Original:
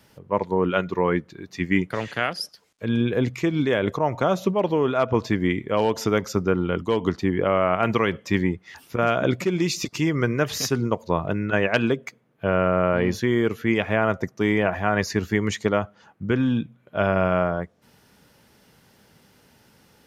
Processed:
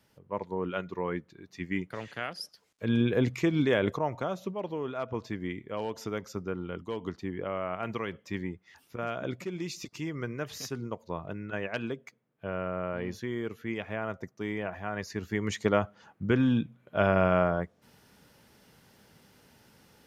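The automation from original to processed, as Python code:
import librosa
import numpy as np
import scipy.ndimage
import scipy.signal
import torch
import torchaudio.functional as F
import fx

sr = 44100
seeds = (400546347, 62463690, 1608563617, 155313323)

y = fx.gain(x, sr, db=fx.line((2.26, -11.0), (2.89, -3.5), (3.81, -3.5), (4.37, -13.0), (15.07, -13.0), (15.75, -3.0)))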